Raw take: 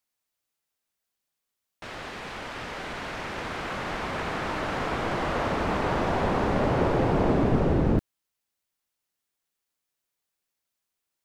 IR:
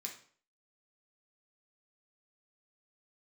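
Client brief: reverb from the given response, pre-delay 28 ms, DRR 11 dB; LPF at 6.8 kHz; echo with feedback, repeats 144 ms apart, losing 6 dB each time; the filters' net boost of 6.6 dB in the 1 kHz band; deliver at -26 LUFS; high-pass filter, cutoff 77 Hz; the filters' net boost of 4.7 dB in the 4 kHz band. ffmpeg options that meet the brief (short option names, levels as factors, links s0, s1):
-filter_complex "[0:a]highpass=77,lowpass=6800,equalizer=f=1000:t=o:g=8,equalizer=f=4000:t=o:g=6,aecho=1:1:144|288|432|576|720|864:0.501|0.251|0.125|0.0626|0.0313|0.0157,asplit=2[s0][s1];[1:a]atrim=start_sample=2205,adelay=28[s2];[s1][s2]afir=irnorm=-1:irlink=0,volume=0.376[s3];[s0][s3]amix=inputs=2:normalize=0,volume=0.708"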